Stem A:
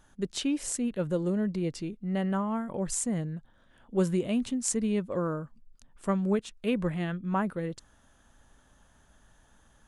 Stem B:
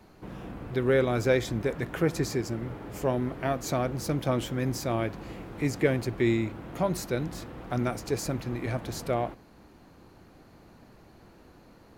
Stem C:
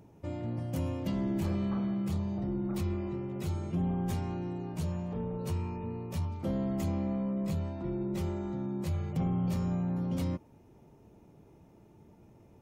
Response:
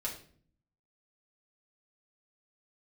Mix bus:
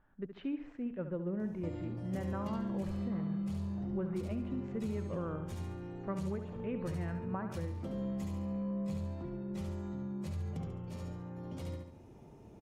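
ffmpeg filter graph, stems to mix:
-filter_complex "[0:a]lowpass=frequency=2200:width=0.5412,lowpass=frequency=2200:width=1.3066,volume=-8.5dB,asplit=2[link_01][link_02];[link_02]volume=-10dB[link_03];[2:a]lowpass=11000,adelay=1400,volume=2.5dB,asplit=2[link_04][link_05];[link_05]volume=-14.5dB[link_06];[link_04]acompressor=threshold=-41dB:ratio=4,volume=0dB[link_07];[link_03][link_06]amix=inputs=2:normalize=0,aecho=0:1:70|140|210|280|350|420:1|0.45|0.202|0.0911|0.041|0.0185[link_08];[link_01][link_07][link_08]amix=inputs=3:normalize=0,alimiter=level_in=4dB:limit=-24dB:level=0:latency=1:release=212,volume=-4dB"

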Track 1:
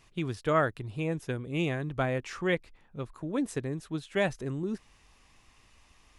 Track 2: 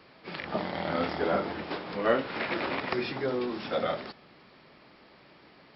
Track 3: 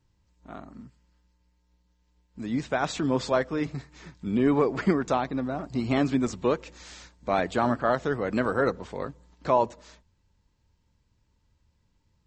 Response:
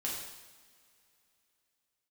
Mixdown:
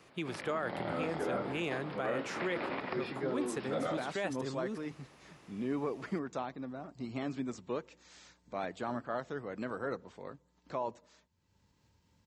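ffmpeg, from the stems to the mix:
-filter_complex "[0:a]acrossover=split=300|3000[link_01][link_02][link_03];[link_01]acompressor=threshold=-42dB:ratio=6[link_04];[link_04][link_02][link_03]amix=inputs=3:normalize=0,volume=-1.5dB[link_05];[1:a]aemphasis=mode=reproduction:type=75kf,volume=-4.5dB[link_06];[2:a]acompressor=mode=upward:threshold=-38dB:ratio=2.5,adelay=1250,volume=-12.5dB[link_07];[link_05][link_06][link_07]amix=inputs=3:normalize=0,highpass=100,alimiter=level_in=1.5dB:limit=-24dB:level=0:latency=1:release=18,volume=-1.5dB"

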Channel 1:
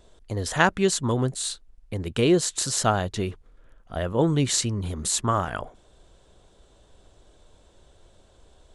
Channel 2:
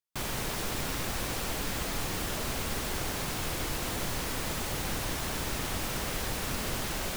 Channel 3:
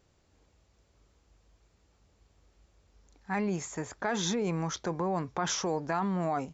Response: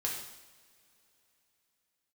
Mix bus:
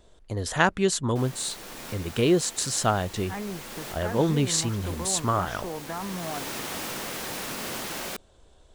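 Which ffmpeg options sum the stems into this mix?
-filter_complex "[0:a]volume=-1.5dB,asplit=2[link_01][link_02];[1:a]highpass=190,adelay=1000,volume=0.5dB,asplit=2[link_03][link_04];[link_04]volume=-15dB[link_05];[2:a]lowpass=2900,volume=-4dB[link_06];[link_02]apad=whole_len=360069[link_07];[link_03][link_07]sidechaincompress=threshold=-50dB:ratio=3:attack=16:release=544[link_08];[3:a]atrim=start_sample=2205[link_09];[link_05][link_09]afir=irnorm=-1:irlink=0[link_10];[link_01][link_08][link_06][link_10]amix=inputs=4:normalize=0"

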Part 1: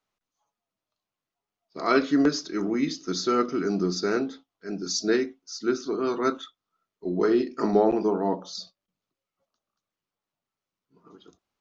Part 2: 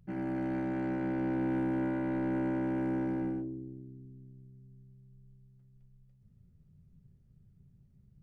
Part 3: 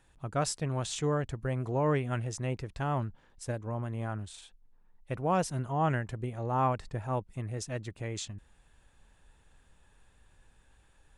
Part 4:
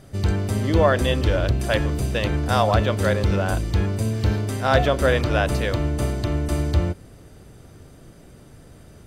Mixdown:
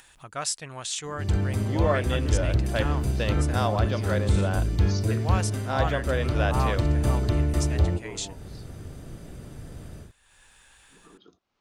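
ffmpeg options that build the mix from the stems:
ffmpeg -i stem1.wav -i stem2.wav -i stem3.wav -i stem4.wav -filter_complex "[0:a]lowpass=5200,volume=-7dB[link_01];[1:a]adelay=1000,volume=-11dB[link_02];[2:a]tiltshelf=frequency=820:gain=-9,volume=-2dB,asplit=2[link_03][link_04];[3:a]lowshelf=frequency=200:gain=6,dynaudnorm=framelen=190:gausssize=3:maxgain=12dB,adelay=1050,volume=-10.5dB[link_05];[link_04]apad=whole_len=511699[link_06];[link_01][link_06]sidechaincompress=threshold=-41dB:ratio=8:attack=16:release=1200[link_07];[link_07][link_02][link_03][link_05]amix=inputs=4:normalize=0,acompressor=mode=upward:threshold=-45dB:ratio=2.5" out.wav

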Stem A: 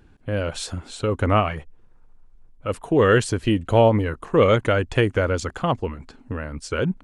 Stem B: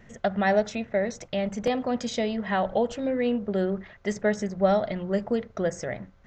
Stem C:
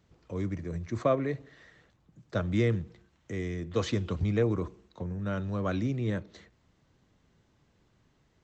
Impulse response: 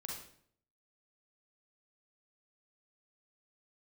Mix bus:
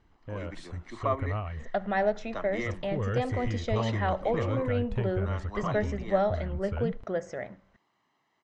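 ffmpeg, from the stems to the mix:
-filter_complex "[0:a]asubboost=boost=10.5:cutoff=100,acompressor=threshold=-19dB:ratio=2,volume=-13dB[link_01];[1:a]lowshelf=frequency=200:gain=-10,adelay=1500,volume=-3.5dB,asplit=2[link_02][link_03];[link_03]volume=-19.5dB[link_04];[2:a]highpass=500,aecho=1:1:1:0.62,volume=0.5dB[link_05];[3:a]atrim=start_sample=2205[link_06];[link_04][link_06]afir=irnorm=-1:irlink=0[link_07];[link_01][link_02][link_05][link_07]amix=inputs=4:normalize=0,aemphasis=mode=reproduction:type=75fm"

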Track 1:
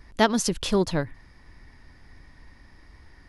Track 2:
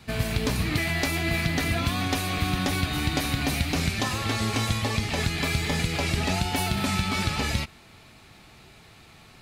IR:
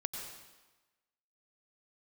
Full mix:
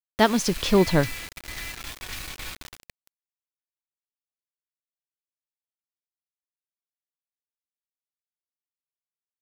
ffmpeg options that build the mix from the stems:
-filter_complex "[0:a]dynaudnorm=framelen=160:gausssize=9:maxgain=7dB,volume=1dB,asplit=2[link_01][link_02];[1:a]highpass=frequency=1400:width=0.5412,highpass=frequency=1400:width=1.3066,volume=-6.5dB[link_03];[link_02]apad=whole_len=415249[link_04];[link_03][link_04]sidechaingate=range=-16dB:threshold=-41dB:ratio=16:detection=peak[link_05];[link_01][link_05]amix=inputs=2:normalize=0,equalizer=frequency=9000:width_type=o:width=0.72:gain=-7,acrusher=bits=5:mix=0:aa=0.000001"

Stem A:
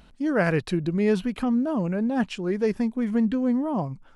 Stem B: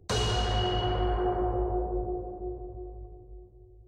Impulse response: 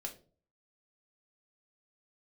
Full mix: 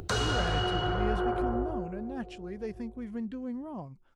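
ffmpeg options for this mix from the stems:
-filter_complex "[0:a]volume=-13.5dB[link_01];[1:a]equalizer=frequency=1400:width=4.2:gain=11,acompressor=mode=upward:threshold=-29dB:ratio=2.5,volume=-2dB,afade=type=out:start_time=1.52:duration=0.39:silence=0.316228,afade=type=out:start_time=2.86:duration=0.41:silence=0.316228,asplit=2[link_02][link_03];[link_03]volume=-18dB,aecho=0:1:381:1[link_04];[link_01][link_02][link_04]amix=inputs=3:normalize=0"

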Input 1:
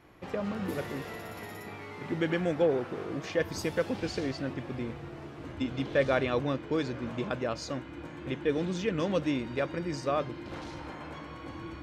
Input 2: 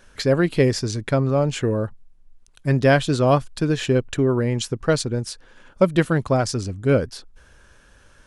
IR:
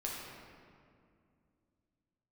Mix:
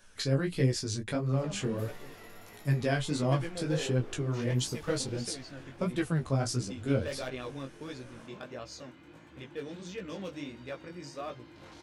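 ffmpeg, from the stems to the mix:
-filter_complex "[0:a]asoftclip=type=hard:threshold=-20.5dB,adelay=1100,volume=-8dB[link_01];[1:a]acrossover=split=250[link_02][link_03];[link_03]acompressor=threshold=-32dB:ratio=1.5[link_04];[link_02][link_04]amix=inputs=2:normalize=0,flanger=delay=8.6:depth=8.8:regen=27:speed=1:shape=triangular,volume=-2dB[link_05];[link_01][link_05]amix=inputs=2:normalize=0,flanger=delay=15.5:depth=6.8:speed=1.5,highshelf=frequency=3500:gain=8.5"

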